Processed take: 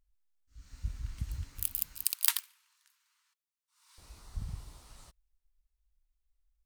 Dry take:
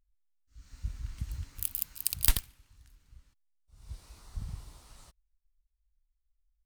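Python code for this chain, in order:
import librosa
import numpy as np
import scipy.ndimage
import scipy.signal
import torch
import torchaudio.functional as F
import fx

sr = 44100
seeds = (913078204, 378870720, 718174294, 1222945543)

y = fx.brickwall_highpass(x, sr, low_hz=870.0, at=(2.04, 3.98))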